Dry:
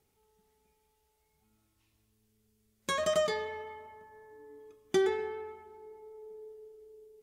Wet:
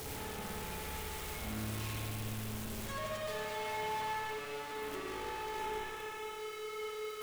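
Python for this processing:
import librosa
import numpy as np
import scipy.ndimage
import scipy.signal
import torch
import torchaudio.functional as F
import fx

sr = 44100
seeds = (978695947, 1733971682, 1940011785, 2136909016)

y = np.sign(x) * np.sqrt(np.mean(np.square(x)))
y = fx.notch(y, sr, hz=4500.0, q=5.2, at=(5.59, 6.39))
y = fx.echo_diffused(y, sr, ms=570, feedback_pct=47, wet_db=-13)
y = fx.rev_spring(y, sr, rt60_s=1.6, pass_ms=(56,), chirp_ms=50, drr_db=-4.0)
y = y * 10.0 ** (-6.0 / 20.0)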